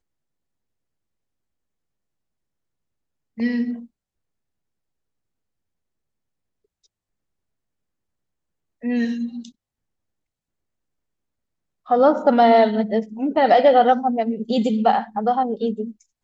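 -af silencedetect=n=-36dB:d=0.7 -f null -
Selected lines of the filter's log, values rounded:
silence_start: 0.00
silence_end: 3.38 | silence_duration: 3.38
silence_start: 3.85
silence_end: 8.83 | silence_duration: 4.99
silence_start: 9.49
silence_end: 11.88 | silence_duration: 2.39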